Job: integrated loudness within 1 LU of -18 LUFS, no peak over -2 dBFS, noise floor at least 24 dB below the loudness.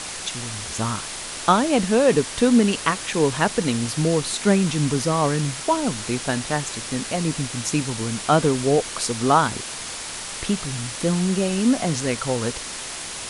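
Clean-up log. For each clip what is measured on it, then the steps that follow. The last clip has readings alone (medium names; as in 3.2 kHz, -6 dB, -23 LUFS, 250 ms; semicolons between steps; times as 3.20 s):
noise floor -33 dBFS; noise floor target -46 dBFS; loudness -22.0 LUFS; peak level -3.0 dBFS; loudness target -18.0 LUFS
-> noise print and reduce 13 dB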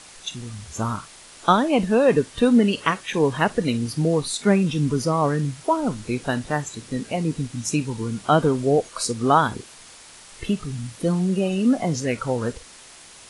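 noise floor -46 dBFS; noise floor target -47 dBFS
-> noise print and reduce 6 dB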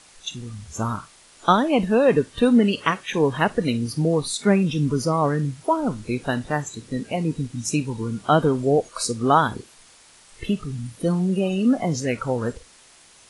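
noise floor -52 dBFS; loudness -22.5 LUFS; peak level -3.5 dBFS; loudness target -18.0 LUFS
-> trim +4.5 dB; peak limiter -2 dBFS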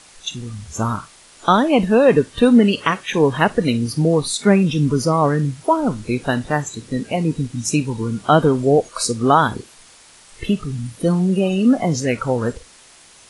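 loudness -18.0 LUFS; peak level -2.0 dBFS; noise floor -47 dBFS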